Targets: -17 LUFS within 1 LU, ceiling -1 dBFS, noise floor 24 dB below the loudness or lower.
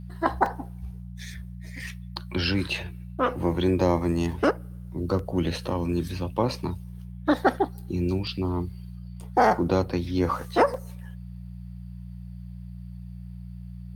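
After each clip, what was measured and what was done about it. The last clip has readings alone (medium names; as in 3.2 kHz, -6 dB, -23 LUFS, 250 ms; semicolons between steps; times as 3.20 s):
dropouts 6; longest dropout 2.6 ms; hum 60 Hz; highest harmonic 180 Hz; hum level -37 dBFS; loudness -26.5 LUFS; peak level -7.5 dBFS; loudness target -17.0 LUFS
-> interpolate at 0.46/4.32/5.19/8.27/10.18/10.74 s, 2.6 ms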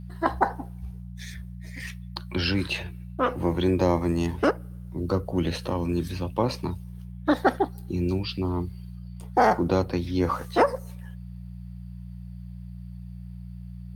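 dropouts 0; hum 60 Hz; highest harmonic 180 Hz; hum level -37 dBFS
-> de-hum 60 Hz, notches 3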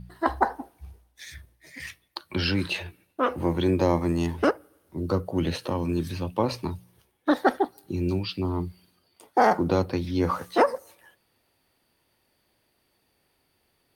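hum not found; loudness -26.5 LUFS; peak level -7.0 dBFS; loudness target -17.0 LUFS
-> trim +9.5 dB; peak limiter -1 dBFS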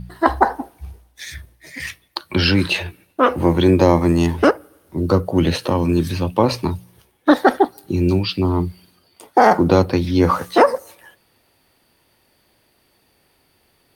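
loudness -17.5 LUFS; peak level -1.0 dBFS; noise floor -61 dBFS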